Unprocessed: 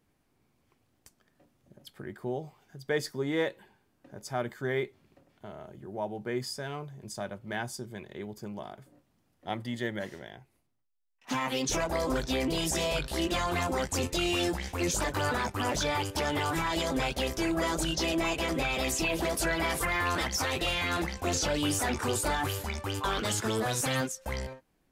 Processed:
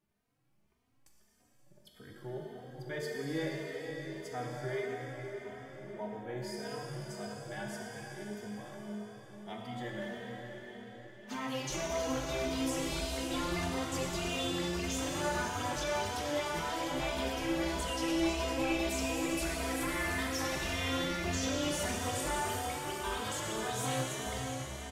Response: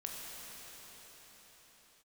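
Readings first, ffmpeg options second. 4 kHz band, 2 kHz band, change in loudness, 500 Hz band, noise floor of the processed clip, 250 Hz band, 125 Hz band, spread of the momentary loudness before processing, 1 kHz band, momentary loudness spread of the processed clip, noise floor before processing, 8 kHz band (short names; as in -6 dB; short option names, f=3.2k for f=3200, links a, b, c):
-5.0 dB, -5.0 dB, -5.0 dB, -4.0 dB, -68 dBFS, -3.0 dB, -4.5 dB, 13 LU, -4.5 dB, 11 LU, -73 dBFS, -5.0 dB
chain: -filter_complex "[1:a]atrim=start_sample=2205[a];[0:a][a]afir=irnorm=-1:irlink=0,asplit=2[b][c];[c]adelay=3,afreqshift=1.7[d];[b][d]amix=inputs=2:normalize=1,volume=-2.5dB"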